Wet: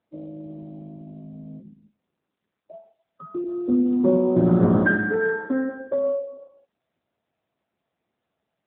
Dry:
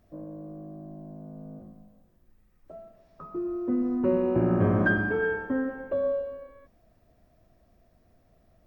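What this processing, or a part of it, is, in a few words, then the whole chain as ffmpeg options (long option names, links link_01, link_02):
mobile call with aggressive noise cancelling: -filter_complex "[0:a]asettb=1/sr,asplit=3[link_01][link_02][link_03];[link_01]atrim=end=3.444[link_04];[link_02]atrim=start=3.44:end=4.8,asetpts=PTS-STARTPTS,afade=type=in:duration=0.004:curve=qsin,afade=type=out:start_time=1.356:duration=0.004:curve=qsin,adynamicequalizer=threshold=0.0178:dfrequency=170:dqfactor=1.1:tfrequency=170:tqfactor=1.1:attack=5:release=100:ratio=0.375:range=2:mode=boostabove:tftype=bell[link_05];[link_03]atrim=start=4.796[link_06];[link_04][link_05]acrossfade=duration=0.004:curve1=hsin:curve2=qsin[link_07];[link_07][link_06]acrossfade=duration=0.004:curve1=qsin:curve2=hsin,highpass=frequency=120:width=0.5412,highpass=frequency=120:width=1.3066,afftdn=noise_reduction=29:noise_floor=-38,volume=4.5dB" -ar 8000 -c:a libopencore_amrnb -b:a 10200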